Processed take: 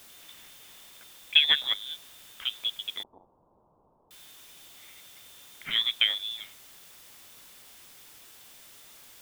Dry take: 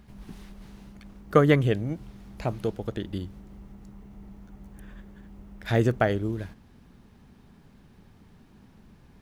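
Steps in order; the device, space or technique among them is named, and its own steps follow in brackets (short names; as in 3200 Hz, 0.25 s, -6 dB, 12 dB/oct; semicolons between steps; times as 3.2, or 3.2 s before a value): scrambled radio voice (BPF 380–2800 Hz; inverted band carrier 3800 Hz; white noise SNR 18 dB); 3.03–4.11 elliptic low-pass 1000 Hz, stop band 50 dB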